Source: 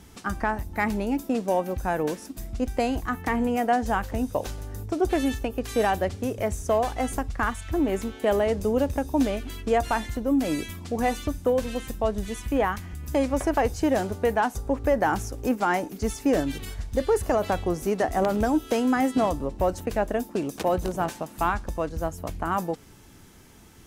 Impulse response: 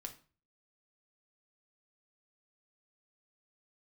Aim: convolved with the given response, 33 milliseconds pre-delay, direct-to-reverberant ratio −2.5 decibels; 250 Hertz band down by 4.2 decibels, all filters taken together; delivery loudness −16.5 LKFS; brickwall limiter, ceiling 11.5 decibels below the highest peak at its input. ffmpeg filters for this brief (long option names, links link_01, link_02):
-filter_complex "[0:a]equalizer=frequency=250:width_type=o:gain=-5,alimiter=limit=-24dB:level=0:latency=1,asplit=2[link_01][link_02];[1:a]atrim=start_sample=2205,adelay=33[link_03];[link_02][link_03]afir=irnorm=-1:irlink=0,volume=6.5dB[link_04];[link_01][link_04]amix=inputs=2:normalize=0,volume=12.5dB"